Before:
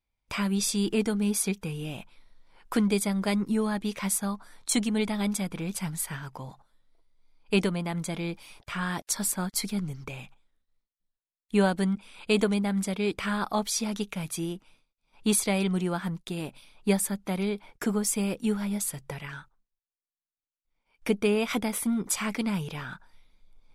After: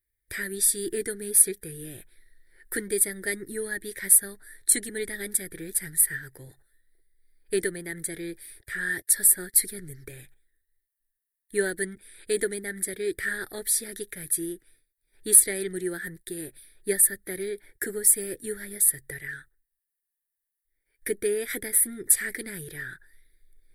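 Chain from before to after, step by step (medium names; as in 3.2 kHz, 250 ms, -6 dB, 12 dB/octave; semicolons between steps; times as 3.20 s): FFT filter 110 Hz 0 dB, 210 Hz -15 dB, 370 Hz +5 dB, 660 Hz -13 dB, 1.1 kHz -24 dB, 1.8 kHz +14 dB, 2.7 kHz -17 dB, 3.8 kHz -1 dB, 6.4 kHz -7 dB, 9.4 kHz +14 dB; trim -1 dB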